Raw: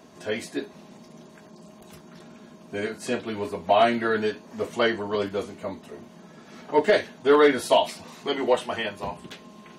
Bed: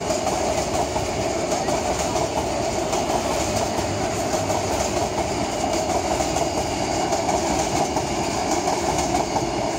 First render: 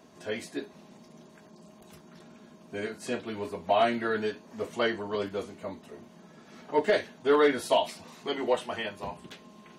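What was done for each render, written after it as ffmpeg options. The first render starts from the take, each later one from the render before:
-af "volume=-5dB"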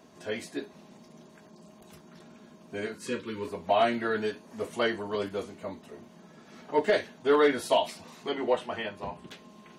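-filter_complex "[0:a]asettb=1/sr,asplit=3[a][b][c];[a]atrim=end=2.954[d];[b]atrim=start=2.95:end=3.48,asetpts=PTS-STARTPTS,afade=t=in:d=0.004:c=qsin,afade=t=out:st=0.526:d=0.004:c=qsin,asuperstop=centerf=720:order=12:qfactor=2.3[e];[c]atrim=start=3.476[f];[d][e]acrossfade=d=0.004:c1=hsin:c2=qsin[g];[g][f]acrossfade=d=0.004:c1=qsin:c2=hsin,asettb=1/sr,asplit=3[h][i][j];[h]atrim=end=4.244[k];[i]atrim=start=4.24:end=5.4,asetpts=PTS-STARTPTS,afade=t=in:d=0.004:c=qsin,afade=t=out:st=1.156:d=0.004:c=qsin,equalizer=f=10k:w=2.2:g=8[l];[j]atrim=start=5.396[m];[k][l]acrossfade=d=0.004:c1=hsin:c2=qsin[n];[n][m]acrossfade=d=0.004:c1=qsin:c2=hsin,asettb=1/sr,asplit=3[o][p][q];[o]atrim=end=8.294[r];[p]atrim=start=8.29:end=9.27,asetpts=PTS-STARTPTS,afade=t=in:d=0.004:c=qsin,afade=t=out:st=0.976:d=0.004:c=qsin,aemphasis=mode=reproduction:type=cd[s];[q]atrim=start=9.266[t];[r][s]acrossfade=d=0.004:c1=hsin:c2=qsin[u];[u][t]acrossfade=d=0.004:c1=qsin:c2=hsin"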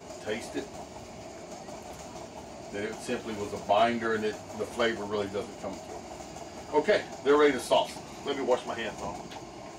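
-filter_complex "[1:a]volume=-20.5dB[a];[0:a][a]amix=inputs=2:normalize=0"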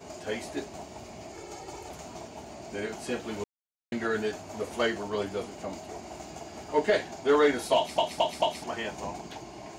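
-filter_complex "[0:a]asettb=1/sr,asplit=3[a][b][c];[a]atrim=end=1.344[d];[b]atrim=start=1.34:end=1.89,asetpts=PTS-STARTPTS,afade=t=in:d=0.004:c=qsin,afade=t=out:st=0.546:d=0.004:c=qsin,aecho=1:1:2.3:0.77,atrim=end_sample=24255[e];[c]atrim=start=1.886[f];[d][e]acrossfade=d=0.004:c1=hsin:c2=qsin[g];[g][f]acrossfade=d=0.004:c1=qsin:c2=hsin,asplit=7[h][i][j][k][l][m][n];[h]atrim=end=3.44,asetpts=PTS-STARTPTS,afade=t=out:st=3.436:d=0.004:c=hsin[o];[i]atrim=start=3.44:end=3.92,asetpts=PTS-STARTPTS,volume=0[p];[j]atrim=start=3.92:end=7.982,asetpts=PTS-STARTPTS,afade=t=in:d=0.004:c=hsin[q];[k]atrim=start=7.758:end=7.982[r];[l]atrim=start=7.758:end=7.982[s];[m]atrim=start=7.758:end=7.982[t];[n]atrim=start=8.638[u];[o][p][q]concat=n=3:v=0:a=1[v];[v][r]acrossfade=d=0.004:c1=hsin:c2=hsin[w];[w][s]acrossfade=d=0.004:c1=hsin:c2=hsin[x];[x][t]acrossfade=d=0.004:c1=hsin:c2=hsin[y];[y][u]acrossfade=d=0.004:c1=hsin:c2=hsin"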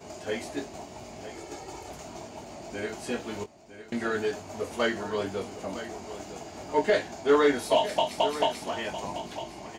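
-filter_complex "[0:a]asplit=2[a][b];[b]adelay=21,volume=-8.5dB[c];[a][c]amix=inputs=2:normalize=0,aecho=1:1:957:0.237"

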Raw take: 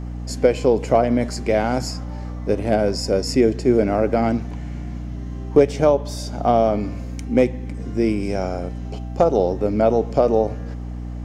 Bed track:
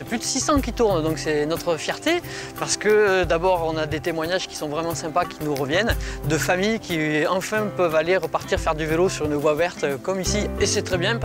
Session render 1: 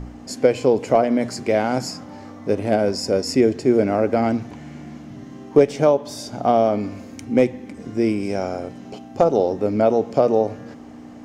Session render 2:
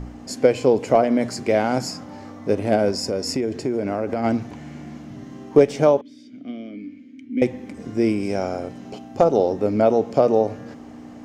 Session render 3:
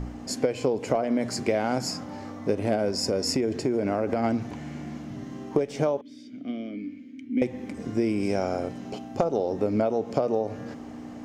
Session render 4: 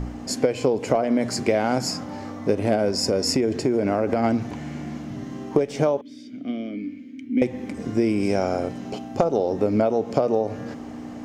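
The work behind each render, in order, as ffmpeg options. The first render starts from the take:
-af "bandreject=f=60:t=h:w=4,bandreject=f=120:t=h:w=4,bandreject=f=180:t=h:w=4"
-filter_complex "[0:a]asplit=3[a][b][c];[a]afade=t=out:st=2.91:d=0.02[d];[b]acompressor=threshold=-19dB:ratio=6:attack=3.2:release=140:knee=1:detection=peak,afade=t=in:st=2.91:d=0.02,afade=t=out:st=4.23:d=0.02[e];[c]afade=t=in:st=4.23:d=0.02[f];[d][e][f]amix=inputs=3:normalize=0,asettb=1/sr,asplit=3[g][h][i];[g]atrim=end=6.014[j];[h]atrim=start=6.01:end=7.42,asetpts=PTS-STARTPTS,afade=t=in:d=0.004:c=qsin,afade=t=out:st=1.406:d=0.004:c=qsin,asplit=3[k][l][m];[k]bandpass=f=270:t=q:w=8,volume=0dB[n];[l]bandpass=f=2.29k:t=q:w=8,volume=-6dB[o];[m]bandpass=f=3.01k:t=q:w=8,volume=-9dB[p];[n][o][p]amix=inputs=3:normalize=0[q];[i]atrim=start=7.416[r];[j][q]acrossfade=d=0.004:c1=hsin:c2=qsin[s];[s][r]acrossfade=d=0.004:c1=qsin:c2=hsin"
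-af "acompressor=threshold=-20dB:ratio=16"
-af "volume=4dB"

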